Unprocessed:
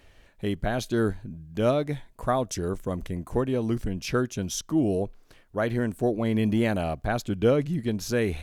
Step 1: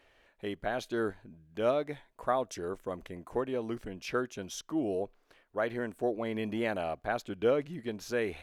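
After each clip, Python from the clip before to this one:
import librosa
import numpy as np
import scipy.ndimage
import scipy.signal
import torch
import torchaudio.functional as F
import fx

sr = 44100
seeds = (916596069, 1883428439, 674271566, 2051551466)

y = fx.bass_treble(x, sr, bass_db=-14, treble_db=-8)
y = F.gain(torch.from_numpy(y), -3.5).numpy()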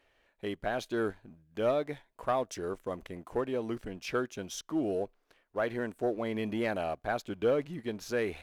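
y = fx.leveller(x, sr, passes=1)
y = F.gain(torch.from_numpy(y), -3.0).numpy()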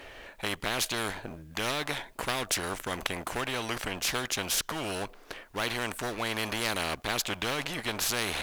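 y = fx.spectral_comp(x, sr, ratio=4.0)
y = F.gain(torch.from_numpy(y), 7.0).numpy()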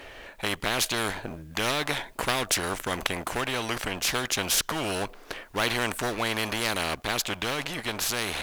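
y = fx.rider(x, sr, range_db=10, speed_s=2.0)
y = F.gain(torch.from_numpy(y), 3.0).numpy()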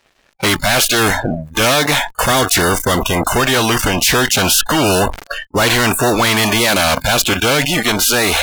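y = fx.fuzz(x, sr, gain_db=36.0, gate_db=-42.0)
y = fx.noise_reduce_blind(y, sr, reduce_db=29)
y = fx.sustainer(y, sr, db_per_s=120.0)
y = F.gain(torch.from_numpy(y), 3.0).numpy()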